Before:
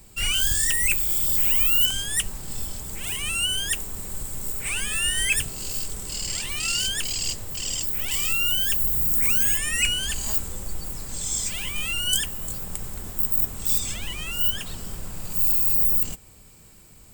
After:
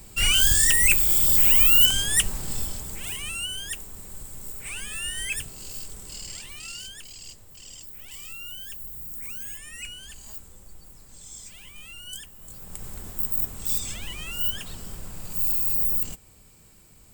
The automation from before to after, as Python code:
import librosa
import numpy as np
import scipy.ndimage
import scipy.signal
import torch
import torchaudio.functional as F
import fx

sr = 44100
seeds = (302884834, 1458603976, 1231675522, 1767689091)

y = fx.gain(x, sr, db=fx.line((2.43, 3.5), (3.5, -7.5), (6.15, -7.5), (7.01, -15.5), (12.33, -15.5), (12.88, -3.5)))